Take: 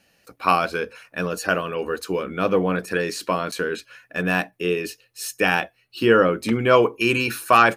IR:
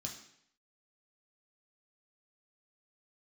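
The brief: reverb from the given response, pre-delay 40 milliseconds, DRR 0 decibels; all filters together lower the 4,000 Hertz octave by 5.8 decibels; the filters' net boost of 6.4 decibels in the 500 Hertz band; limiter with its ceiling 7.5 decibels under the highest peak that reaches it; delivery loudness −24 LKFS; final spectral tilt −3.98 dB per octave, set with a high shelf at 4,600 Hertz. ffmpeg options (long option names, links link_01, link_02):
-filter_complex "[0:a]equalizer=frequency=500:width_type=o:gain=7.5,equalizer=frequency=4000:width_type=o:gain=-5,highshelf=frequency=4600:gain=-8,alimiter=limit=-7dB:level=0:latency=1,asplit=2[link_01][link_02];[1:a]atrim=start_sample=2205,adelay=40[link_03];[link_02][link_03]afir=irnorm=-1:irlink=0,volume=2.5dB[link_04];[link_01][link_04]amix=inputs=2:normalize=0,volume=-7.5dB"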